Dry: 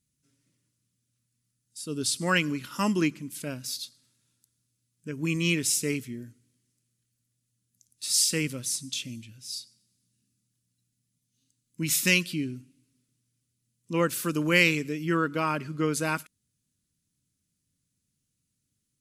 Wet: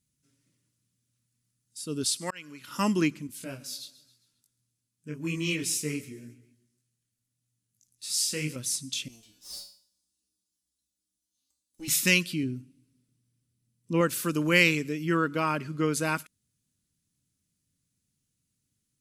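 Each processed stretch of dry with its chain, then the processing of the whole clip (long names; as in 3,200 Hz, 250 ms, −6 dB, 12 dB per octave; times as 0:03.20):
0:02.04–0:02.68: low-shelf EQ 430 Hz −11 dB + volume swells 565 ms
0:03.27–0:08.56: repeating echo 134 ms, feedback 45%, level −18 dB + micro pitch shift up and down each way 31 cents
0:09.08–0:11.88: lower of the sound and its delayed copy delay 3.4 ms + high shelf with overshoot 2,900 Hz +8 dB, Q 1.5 + tuned comb filter 63 Hz, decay 0.46 s, harmonics odd, mix 90%
0:12.43–0:14.01: tilt shelving filter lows +3.5 dB, about 660 Hz + notch filter 6,800 Hz
whole clip: no processing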